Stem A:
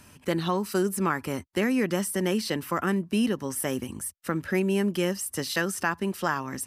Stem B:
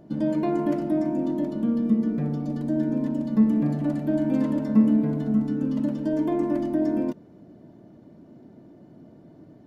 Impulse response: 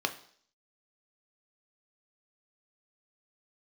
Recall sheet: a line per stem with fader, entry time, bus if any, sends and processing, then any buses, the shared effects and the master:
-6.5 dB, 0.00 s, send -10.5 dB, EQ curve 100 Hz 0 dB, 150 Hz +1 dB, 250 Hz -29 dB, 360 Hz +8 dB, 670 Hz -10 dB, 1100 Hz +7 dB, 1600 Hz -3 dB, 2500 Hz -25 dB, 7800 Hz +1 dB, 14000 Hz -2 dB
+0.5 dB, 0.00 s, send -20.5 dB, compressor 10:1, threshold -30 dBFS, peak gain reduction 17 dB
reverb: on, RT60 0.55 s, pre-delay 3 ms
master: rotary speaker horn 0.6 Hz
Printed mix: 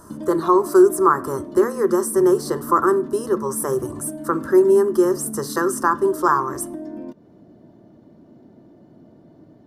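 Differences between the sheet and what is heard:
stem A -6.5 dB -> +4.5 dB; master: missing rotary speaker horn 0.6 Hz

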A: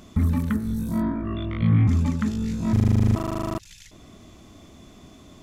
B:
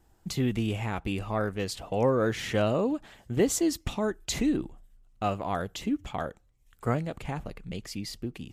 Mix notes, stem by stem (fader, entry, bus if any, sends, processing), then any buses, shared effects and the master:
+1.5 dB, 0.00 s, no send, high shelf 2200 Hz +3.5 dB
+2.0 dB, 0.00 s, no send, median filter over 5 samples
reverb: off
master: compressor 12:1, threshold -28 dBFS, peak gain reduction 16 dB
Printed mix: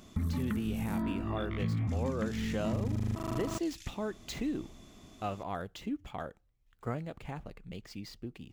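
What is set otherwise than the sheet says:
stem A +1.5 dB -> -7.5 dB; stem B +2.0 dB -> -7.0 dB

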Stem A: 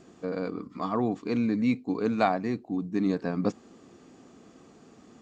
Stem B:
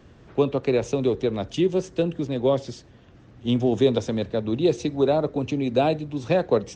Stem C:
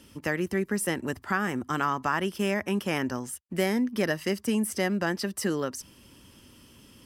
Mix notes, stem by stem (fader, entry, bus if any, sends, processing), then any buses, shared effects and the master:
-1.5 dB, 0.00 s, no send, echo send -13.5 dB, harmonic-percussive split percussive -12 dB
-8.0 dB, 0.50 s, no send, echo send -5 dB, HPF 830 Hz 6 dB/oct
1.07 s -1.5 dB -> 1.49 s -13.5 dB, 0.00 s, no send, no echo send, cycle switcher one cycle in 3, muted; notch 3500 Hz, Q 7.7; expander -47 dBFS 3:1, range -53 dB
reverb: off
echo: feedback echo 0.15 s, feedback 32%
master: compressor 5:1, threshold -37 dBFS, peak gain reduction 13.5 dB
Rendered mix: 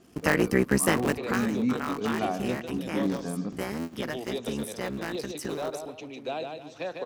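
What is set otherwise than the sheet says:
stem C -1.5 dB -> +6.5 dB; master: missing compressor 5:1, threshold -37 dBFS, peak gain reduction 13.5 dB

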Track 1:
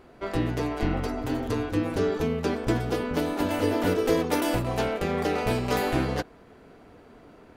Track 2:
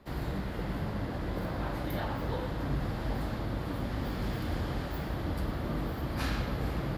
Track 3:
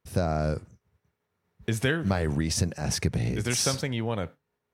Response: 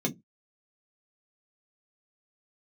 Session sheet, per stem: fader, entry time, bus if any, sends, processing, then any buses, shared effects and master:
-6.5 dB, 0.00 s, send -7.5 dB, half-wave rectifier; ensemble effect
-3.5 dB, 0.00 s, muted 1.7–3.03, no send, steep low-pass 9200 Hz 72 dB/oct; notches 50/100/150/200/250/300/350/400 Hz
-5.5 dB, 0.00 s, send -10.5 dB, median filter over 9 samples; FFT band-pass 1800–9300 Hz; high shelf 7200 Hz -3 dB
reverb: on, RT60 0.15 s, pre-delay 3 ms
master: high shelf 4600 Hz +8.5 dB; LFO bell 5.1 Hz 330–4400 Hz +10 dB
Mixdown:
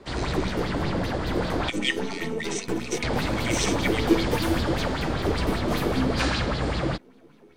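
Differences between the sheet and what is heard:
stem 2 -3.5 dB -> +6.0 dB; stem 3 -5.5 dB -> +0.5 dB

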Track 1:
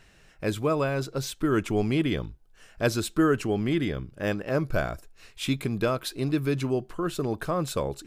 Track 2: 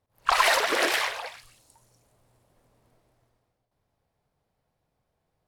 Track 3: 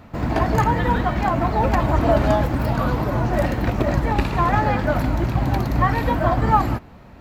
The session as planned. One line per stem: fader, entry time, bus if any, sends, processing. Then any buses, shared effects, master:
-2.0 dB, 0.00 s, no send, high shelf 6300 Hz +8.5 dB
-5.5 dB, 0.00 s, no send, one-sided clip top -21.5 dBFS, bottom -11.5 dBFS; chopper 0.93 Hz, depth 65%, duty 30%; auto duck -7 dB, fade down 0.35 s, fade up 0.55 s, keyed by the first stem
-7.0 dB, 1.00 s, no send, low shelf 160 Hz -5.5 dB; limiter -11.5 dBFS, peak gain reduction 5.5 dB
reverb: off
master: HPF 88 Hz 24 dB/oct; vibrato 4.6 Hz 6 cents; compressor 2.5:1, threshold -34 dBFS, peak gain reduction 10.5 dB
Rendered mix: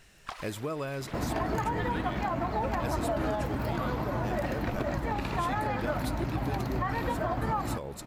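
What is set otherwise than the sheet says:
stem 3 -7.0 dB -> +3.5 dB; master: missing HPF 88 Hz 24 dB/oct

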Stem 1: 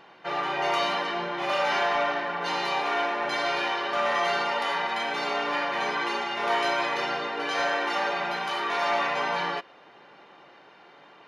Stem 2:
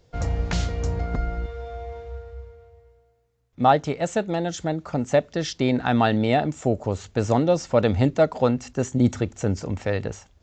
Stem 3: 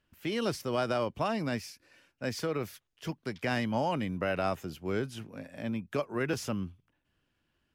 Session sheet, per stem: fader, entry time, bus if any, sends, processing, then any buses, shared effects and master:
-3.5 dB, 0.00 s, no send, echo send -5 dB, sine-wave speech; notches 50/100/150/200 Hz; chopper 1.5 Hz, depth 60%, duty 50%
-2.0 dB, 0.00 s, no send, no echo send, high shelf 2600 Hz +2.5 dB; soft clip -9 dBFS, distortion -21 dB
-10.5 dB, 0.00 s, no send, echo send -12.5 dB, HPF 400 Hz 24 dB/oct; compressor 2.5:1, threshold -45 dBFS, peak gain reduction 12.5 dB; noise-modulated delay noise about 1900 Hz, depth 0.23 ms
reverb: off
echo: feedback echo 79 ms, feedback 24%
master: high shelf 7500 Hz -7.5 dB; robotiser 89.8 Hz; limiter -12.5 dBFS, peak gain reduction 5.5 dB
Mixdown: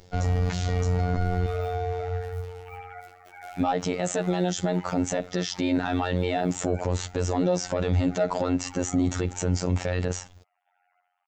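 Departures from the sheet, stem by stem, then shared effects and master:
stem 1 -3.5 dB -> -15.0 dB; stem 2 -2.0 dB -> +8.5 dB; master: missing high shelf 7500 Hz -7.5 dB

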